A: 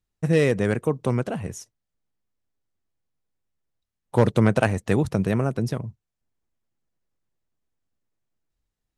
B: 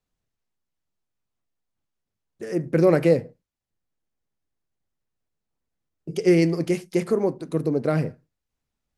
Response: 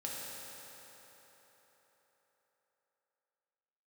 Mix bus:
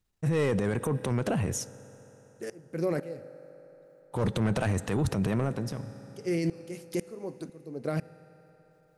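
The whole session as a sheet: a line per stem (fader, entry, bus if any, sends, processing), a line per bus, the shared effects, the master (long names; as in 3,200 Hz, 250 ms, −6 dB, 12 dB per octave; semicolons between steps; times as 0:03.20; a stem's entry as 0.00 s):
+2.5 dB, 0.00 s, send −19.5 dB, transient designer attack −9 dB, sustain +4 dB; soft clipping −15.5 dBFS, distortion −13 dB; automatic ducking −22 dB, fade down 0.75 s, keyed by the second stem
−1.0 dB, 0.00 s, send −20 dB, high-shelf EQ 6,000 Hz +8.5 dB; tremolo with a ramp in dB swelling 2 Hz, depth 30 dB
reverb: on, RT60 4.4 s, pre-delay 3 ms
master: brickwall limiter −20 dBFS, peak gain reduction 10.5 dB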